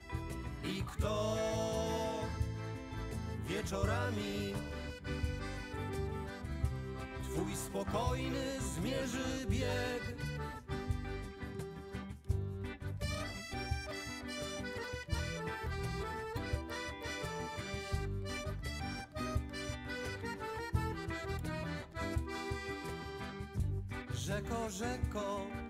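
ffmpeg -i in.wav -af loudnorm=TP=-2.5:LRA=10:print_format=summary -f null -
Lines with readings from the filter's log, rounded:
Input Integrated:    -39.8 LUFS
Input True Peak:     -20.1 dBTP
Input LRA:             3.1 LU
Input Threshold:     -49.8 LUFS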